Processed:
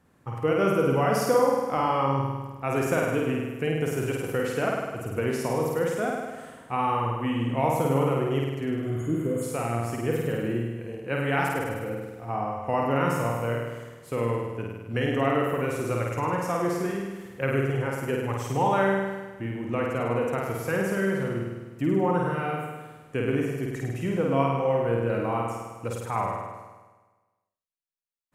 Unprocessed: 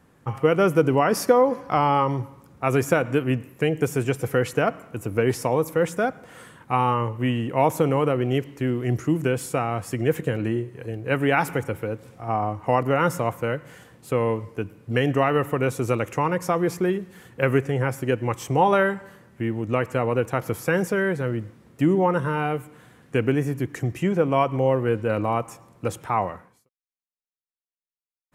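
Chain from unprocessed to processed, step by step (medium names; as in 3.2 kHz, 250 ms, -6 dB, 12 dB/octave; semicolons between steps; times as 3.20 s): spectral replace 8.85–9.40 s, 750–6400 Hz before; flutter echo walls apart 8.8 m, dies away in 1.3 s; trim -7 dB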